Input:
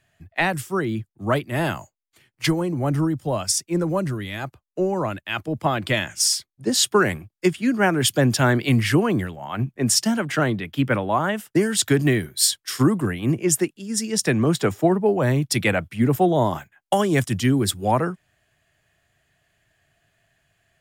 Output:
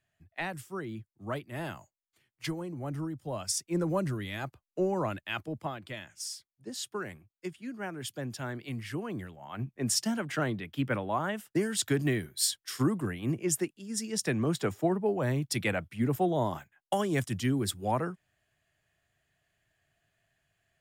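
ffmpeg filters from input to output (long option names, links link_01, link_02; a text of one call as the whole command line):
ffmpeg -i in.wav -af "volume=3dB,afade=type=in:start_time=3.19:duration=0.7:silence=0.421697,afade=type=out:start_time=5.23:duration=0.57:silence=0.237137,afade=type=in:start_time=8.88:duration=1.03:silence=0.334965" out.wav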